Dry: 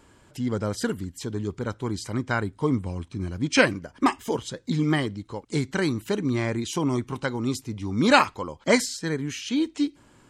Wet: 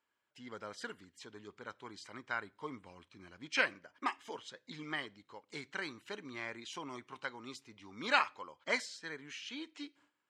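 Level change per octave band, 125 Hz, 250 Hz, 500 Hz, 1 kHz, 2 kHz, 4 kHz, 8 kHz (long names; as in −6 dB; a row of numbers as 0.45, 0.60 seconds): −29.0, −23.5, −18.0, −12.0, −9.0, −11.0, −17.5 decibels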